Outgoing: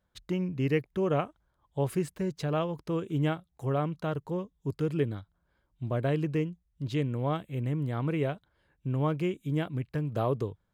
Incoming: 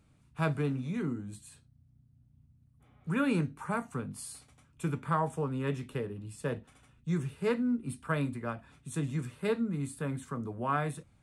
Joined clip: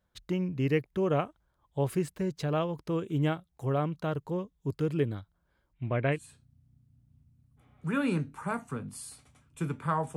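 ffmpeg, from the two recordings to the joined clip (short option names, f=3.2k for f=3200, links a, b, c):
-filter_complex "[0:a]asettb=1/sr,asplit=3[a][b][c];[a]atrim=end=5.734[d];[b]atrim=start=5.73:end=6.19,asetpts=PTS-STARTPTS,afade=t=in:d=0.004:c=qsin,afade=t=out:st=0.456:d=0.004:c=qsin,lowpass=f=2.3k:t=q:w=4[e];[c]atrim=start=6.186[f];[d][e]acrossfade=d=0.004:c1=hsin:c2=qsin[g];[g][f]acrossfade=d=0.004:c1=qsin:c2=hsin,apad=whole_dur=10.16,atrim=end=10.16,atrim=end=6.19,asetpts=PTS-STARTPTS[h];[1:a]atrim=start=1.34:end=5.39,asetpts=PTS-STARTPTS[i];[h][i]acrossfade=d=0.08:c1=tri:c2=tri"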